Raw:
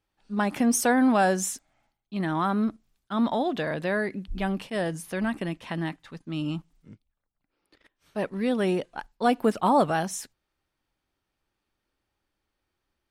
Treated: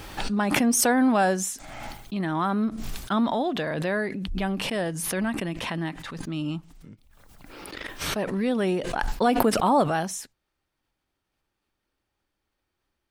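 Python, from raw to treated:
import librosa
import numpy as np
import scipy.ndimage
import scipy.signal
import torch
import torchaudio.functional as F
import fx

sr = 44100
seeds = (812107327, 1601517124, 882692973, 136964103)

y = fx.pre_swell(x, sr, db_per_s=28.0)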